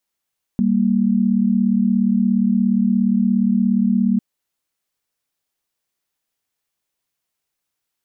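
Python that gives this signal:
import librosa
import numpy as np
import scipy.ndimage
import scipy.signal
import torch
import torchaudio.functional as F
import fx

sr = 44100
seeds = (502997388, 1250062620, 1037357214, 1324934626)

y = fx.chord(sr, length_s=3.6, notes=(55, 58), wave='sine', level_db=-16.5)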